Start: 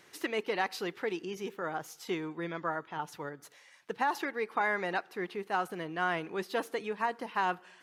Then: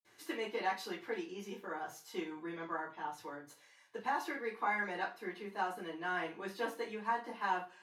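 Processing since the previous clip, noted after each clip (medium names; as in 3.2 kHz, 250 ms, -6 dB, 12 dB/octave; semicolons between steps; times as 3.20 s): reverberation RT60 0.30 s, pre-delay 46 ms; trim +14.5 dB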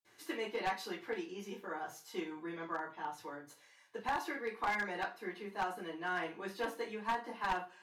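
one-sided wavefolder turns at -29 dBFS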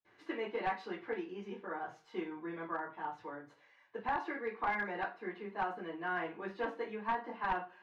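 low-pass 2.3 kHz 12 dB/octave; trim +1 dB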